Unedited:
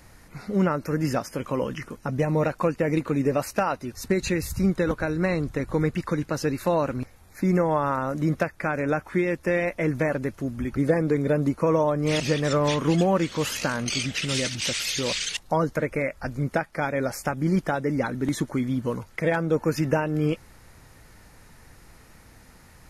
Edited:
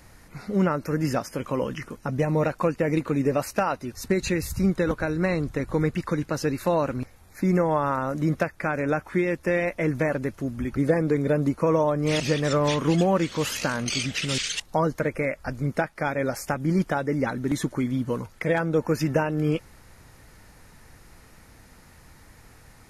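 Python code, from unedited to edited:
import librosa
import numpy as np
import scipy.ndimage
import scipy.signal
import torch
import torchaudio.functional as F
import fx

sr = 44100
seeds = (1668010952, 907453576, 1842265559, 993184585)

y = fx.edit(x, sr, fx.cut(start_s=14.38, length_s=0.77), tone=tone)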